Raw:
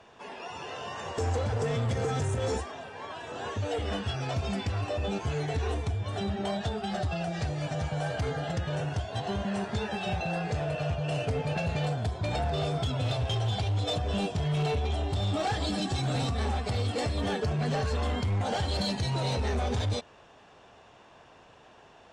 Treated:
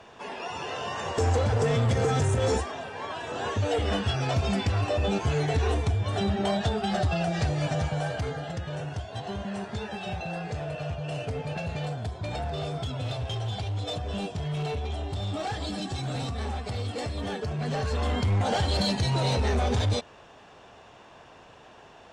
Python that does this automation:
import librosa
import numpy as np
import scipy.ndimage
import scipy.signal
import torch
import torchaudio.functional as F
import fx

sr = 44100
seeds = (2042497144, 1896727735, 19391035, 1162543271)

y = fx.gain(x, sr, db=fx.line((7.7, 5.0), (8.48, -2.5), (17.49, -2.5), (18.28, 4.0)))